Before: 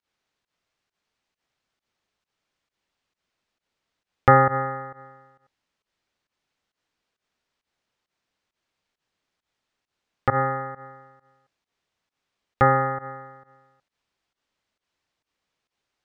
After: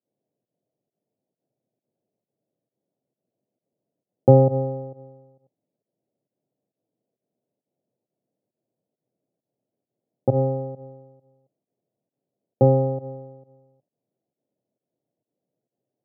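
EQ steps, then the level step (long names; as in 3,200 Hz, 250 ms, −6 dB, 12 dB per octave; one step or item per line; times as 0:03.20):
elliptic band-pass filter 120–640 Hz, stop band 40 dB
high-frequency loss of the air 430 metres
+7.0 dB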